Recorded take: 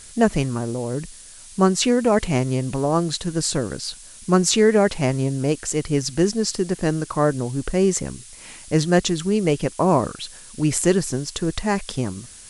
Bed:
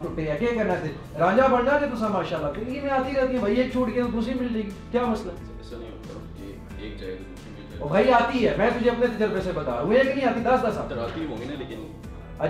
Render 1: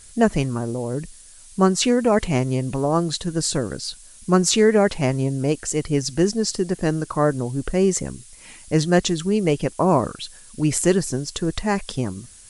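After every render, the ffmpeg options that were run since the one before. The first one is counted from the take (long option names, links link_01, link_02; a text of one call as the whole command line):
ffmpeg -i in.wav -af "afftdn=noise_reduction=6:noise_floor=-43" out.wav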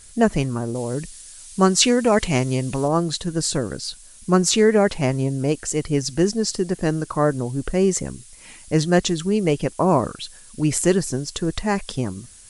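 ffmpeg -i in.wav -filter_complex "[0:a]asettb=1/sr,asplit=3[link_01][link_02][link_03];[link_01]atrim=end=0.754[link_04];[link_02]atrim=start=0.75:end=2.88,asetpts=PTS-STARTPTS,afade=type=in:duration=0.004:curve=qsin,afade=type=out:start_time=2.126:duration=0.004:curve=qsin,equalizer=frequency=5400:width=0.33:gain=6[link_05];[link_03]atrim=start=2.876[link_06];[link_04][link_05]acrossfade=duration=0.004:curve1=hsin:curve2=qsin[link_07];[link_07][link_06]acrossfade=duration=0.004:curve1=qsin:curve2=hsin" out.wav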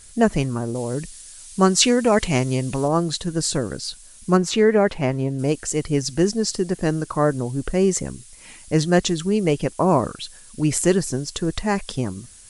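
ffmpeg -i in.wav -filter_complex "[0:a]asettb=1/sr,asplit=3[link_01][link_02][link_03];[link_01]atrim=end=4.374[link_04];[link_02]atrim=start=4.37:end=5.39,asetpts=PTS-STARTPTS,afade=type=in:duration=0.004:curve=qsin,afade=type=out:start_time=1.016:duration=0.004:curve=qsin,bass=frequency=250:gain=-2,treble=frequency=4000:gain=-10[link_05];[link_03]atrim=start=5.386[link_06];[link_04][link_05]acrossfade=duration=0.004:curve1=hsin:curve2=qsin[link_07];[link_07][link_06]acrossfade=duration=0.004:curve1=qsin:curve2=hsin" out.wav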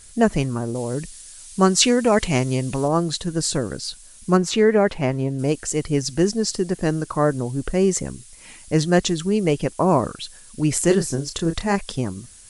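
ffmpeg -i in.wav -filter_complex "[0:a]asettb=1/sr,asplit=3[link_01][link_02][link_03];[link_01]atrim=end=10.844[link_04];[link_02]atrim=start=10.84:end=11.76,asetpts=PTS-STARTPTS,afade=type=in:duration=0.004:curve=qsin,afade=type=out:start_time=0.916:duration=0.004:curve=qsin,asplit=2[link_05][link_06];[link_06]adelay=30,volume=-8dB[link_07];[link_05][link_07]amix=inputs=2:normalize=0,atrim=end_sample=40572[link_08];[link_03]atrim=start=11.756[link_09];[link_04][link_08]acrossfade=duration=0.004:curve1=hsin:curve2=qsin[link_10];[link_10][link_09]acrossfade=duration=0.004:curve1=qsin:curve2=hsin" out.wav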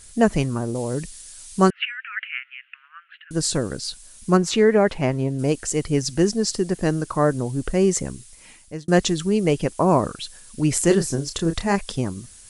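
ffmpeg -i in.wav -filter_complex "[0:a]asettb=1/sr,asplit=3[link_01][link_02][link_03];[link_01]atrim=end=1.704[link_04];[link_02]atrim=start=1.7:end=3.31,asetpts=PTS-STARTPTS,afade=type=in:duration=0.004:curve=qsin,afade=type=out:start_time=1.606:duration=0.004:curve=qsin,asuperpass=centerf=2000:order=12:qfactor=1.3[link_05];[link_03]atrim=start=3.306[link_06];[link_04][link_05]acrossfade=duration=0.004:curve1=hsin:curve2=qsin[link_07];[link_07][link_06]acrossfade=duration=0.004:curve1=qsin:curve2=hsin,asplit=2[link_08][link_09];[link_08]atrim=end=8.88,asetpts=PTS-STARTPTS,afade=type=out:start_time=7.98:duration=0.9:curve=qsin[link_10];[link_09]atrim=start=8.88,asetpts=PTS-STARTPTS,afade=type=in:duration=0.004:curve=hsin[link_11];[link_10][link_11]concat=n=2:v=0:a=1" out.wav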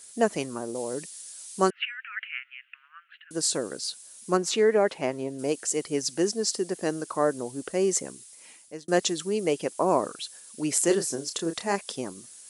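ffmpeg -i in.wav -af "highpass=390,equalizer=frequency=1600:width=0.37:gain=-5.5" out.wav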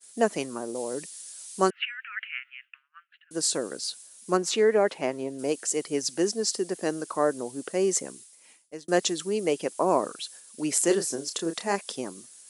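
ffmpeg -i in.wav -af "highpass=160,agate=range=-33dB:threshold=-44dB:ratio=3:detection=peak" out.wav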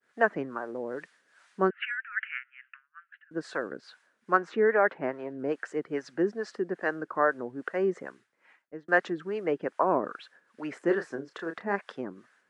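ffmpeg -i in.wav -filter_complex "[0:a]acrossover=split=510[link_01][link_02];[link_01]aeval=exprs='val(0)*(1-0.7/2+0.7/2*cos(2*PI*2.4*n/s))':channel_layout=same[link_03];[link_02]aeval=exprs='val(0)*(1-0.7/2-0.7/2*cos(2*PI*2.4*n/s))':channel_layout=same[link_04];[link_03][link_04]amix=inputs=2:normalize=0,lowpass=frequency=1600:width_type=q:width=3.3" out.wav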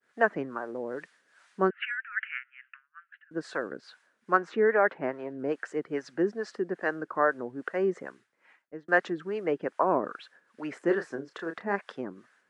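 ffmpeg -i in.wav -af anull out.wav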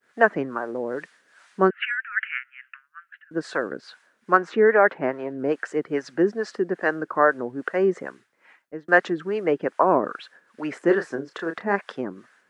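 ffmpeg -i in.wav -af "volume=6.5dB,alimiter=limit=-2dB:level=0:latency=1" out.wav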